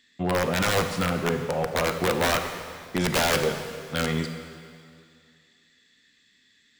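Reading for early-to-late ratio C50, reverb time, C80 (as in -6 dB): 8.0 dB, 2.3 s, 8.5 dB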